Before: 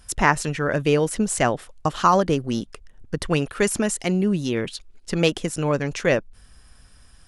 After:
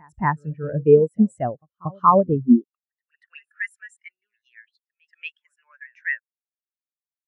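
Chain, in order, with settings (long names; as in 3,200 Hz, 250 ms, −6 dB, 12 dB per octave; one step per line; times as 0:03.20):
echo ahead of the sound 233 ms −12 dB
high-pass filter sweep 64 Hz → 1,700 Hz, 0:02.31–0:02.86
every bin expanded away from the loudest bin 2.5 to 1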